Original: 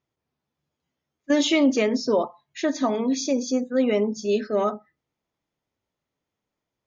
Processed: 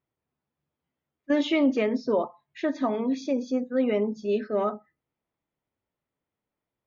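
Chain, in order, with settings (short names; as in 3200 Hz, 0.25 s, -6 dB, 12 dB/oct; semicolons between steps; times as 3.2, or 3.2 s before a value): LPF 2800 Hz 12 dB/oct; gain -3 dB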